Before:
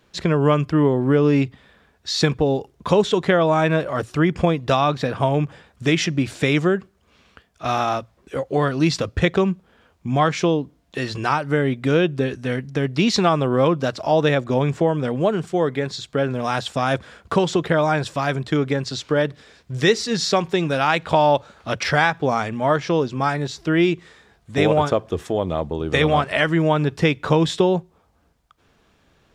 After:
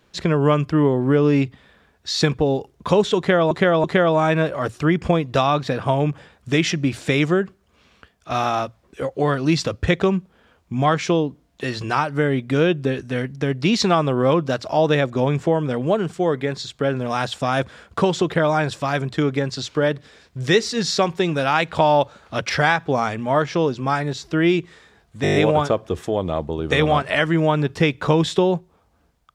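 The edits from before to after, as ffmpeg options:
-filter_complex "[0:a]asplit=9[s0][s1][s2][s3][s4][s5][s6][s7][s8];[s0]atrim=end=3.512[s9];[s1]atrim=start=3.178:end=3.512[s10];[s2]atrim=start=3.178:end=24.592[s11];[s3]atrim=start=24.568:end=24.592[s12];[s4]atrim=start=24.568:end=24.592[s13];[s5]atrim=start=24.568:end=24.592[s14];[s6]atrim=start=24.568:end=24.592[s15];[s7]atrim=start=24.568:end=24.592[s16];[s8]atrim=start=24.568[s17];[s9][s10]acrossfade=d=0.004:c1=hsin:c2=hsin[s18];[s18][s11]acrossfade=d=0.004:c1=hsin:c2=hsin[s19];[s19][s12]acrossfade=d=0.004:c1=hsin:c2=hsin[s20];[s20][s13]acrossfade=d=0.004:c1=hsin:c2=hsin[s21];[s21][s14]acrossfade=d=0.004:c1=hsin:c2=hsin[s22];[s22][s15]acrossfade=d=0.004:c1=hsin:c2=hsin[s23];[s23][s16]acrossfade=d=0.004:c1=hsin:c2=hsin[s24];[s24][s17]acrossfade=d=0.004:c1=hsin:c2=hsin"

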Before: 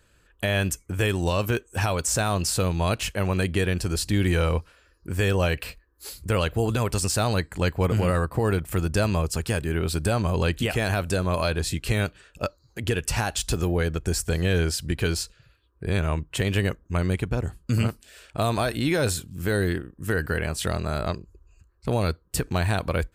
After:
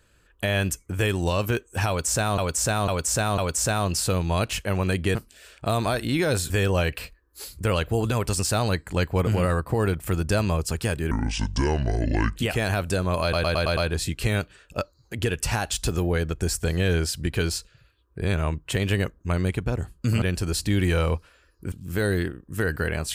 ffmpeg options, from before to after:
-filter_complex "[0:a]asplit=15[s0][s1][s2][s3][s4][s5][s6][s7][s8][s9][s10][s11][s12][s13][s14];[s0]atrim=end=2.382[s15];[s1]atrim=start=1.878:end=2.382[s16];[s2]atrim=start=1.878:end=2.382[s17];[s3]atrim=start=1.878:end=3.652[s18];[s4]atrim=start=17.868:end=19.222[s19];[s5]atrim=start=5.148:end=9.764[s20];[s6]atrim=start=9.76:end=10.56,asetpts=PTS-STARTPTS,asetrate=28224,aresample=44100[s21];[s7]atrim=start=10.556:end=11.532[s22];[s8]atrim=start=11.418:end=11.532[s23];[s9]atrim=start=11.418:end=11.532[s24];[s10]atrim=start=11.418:end=11.532[s25];[s11]atrim=start=11.418:end=11.532[s26];[s12]atrim=start=11.418:end=17.872[s27];[s13]atrim=start=3.648:end=5.152[s28];[s14]atrim=start=19.218[s29];[s15][s16]acrossfade=d=0.004:c1=hsin:c2=hsin[s30];[s30][s17]acrossfade=d=0.004:c1=hsin:c2=hsin[s31];[s31][s18]acrossfade=d=0.004:c1=hsin:c2=hsin[s32];[s32][s19]acrossfade=d=0.004:c1=hsin:c2=hsin[s33];[s33][s20]acrossfade=d=0.004:c1=hsin:c2=hsin[s34];[s34][s21]acrossfade=d=0.004:c1=hsin:c2=hsin[s35];[s35][s22]acrossfade=d=0.004:c1=hsin:c2=hsin[s36];[s36][s23]acrossfade=d=0.004:c1=hsin:c2=hsin[s37];[s37][s24]acrossfade=d=0.004:c1=hsin:c2=hsin[s38];[s38][s25]acrossfade=d=0.004:c1=hsin:c2=hsin[s39];[s39][s26]acrossfade=d=0.004:c1=hsin:c2=hsin[s40];[s40][s27]acrossfade=d=0.004:c1=hsin:c2=hsin[s41];[s41][s28]acrossfade=d=0.004:c1=hsin:c2=hsin[s42];[s42][s29]acrossfade=d=0.004:c1=hsin:c2=hsin"

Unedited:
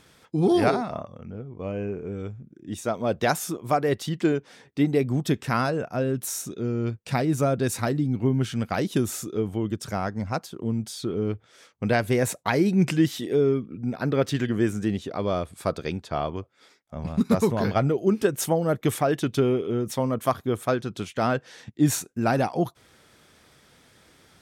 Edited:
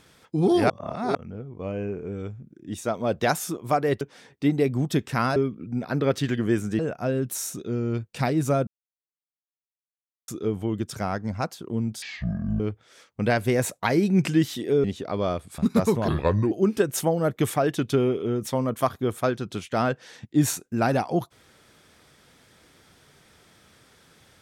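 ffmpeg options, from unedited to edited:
-filter_complex "[0:a]asplit=14[s0][s1][s2][s3][s4][s5][s6][s7][s8][s9][s10][s11][s12][s13];[s0]atrim=end=0.702[s14];[s1]atrim=start=0.698:end=1.152,asetpts=PTS-STARTPTS,areverse[s15];[s2]atrim=start=1.148:end=4.012[s16];[s3]atrim=start=4.358:end=5.712[s17];[s4]atrim=start=13.468:end=14.902[s18];[s5]atrim=start=5.708:end=7.59,asetpts=PTS-STARTPTS,afade=t=out:st=1.878:d=0.004:c=hsin[s19];[s6]atrim=start=7.59:end=9.2,asetpts=PTS-STARTPTS,volume=0[s20];[s7]atrim=start=9.2:end=10.944,asetpts=PTS-STARTPTS,afade=t=in:d=0.004:c=hsin[s21];[s8]atrim=start=10.94:end=11.23,asetpts=PTS-STARTPTS,asetrate=22050,aresample=44100[s22];[s9]atrim=start=11.226:end=13.472[s23];[s10]atrim=start=14.898:end=15.642[s24];[s11]atrim=start=17.128:end=17.634[s25];[s12]atrim=start=17.63:end=17.96,asetpts=PTS-STARTPTS,asetrate=33516,aresample=44100[s26];[s13]atrim=start=17.956[s27];[s14][s15]acrossfade=d=0.004:c1=hsin:c2=hsin[s28];[s28][s16]acrossfade=d=0.004:c1=hsin:c2=hsin[s29];[s29][s17]acrossfade=d=0.004:c1=hsin:c2=hsin[s30];[s30][s18]acrossfade=d=0.004:c1=hsin:c2=hsin[s31];[s19][s20][s21]concat=n=3:v=0:a=1[s32];[s31][s32]acrossfade=d=0.004:c1=hsin:c2=hsin[s33];[s33][s22]acrossfade=d=0.004:c1=hsin:c2=hsin[s34];[s34][s23]acrossfade=d=0.004:c1=hsin:c2=hsin[s35];[s35][s24]acrossfade=d=0.004:c1=hsin:c2=hsin[s36];[s36][s25]acrossfade=d=0.004:c1=hsin:c2=hsin[s37];[s37][s26]acrossfade=d=0.004:c1=hsin:c2=hsin[s38];[s38][s27]acrossfade=d=0.004:c1=hsin:c2=hsin"

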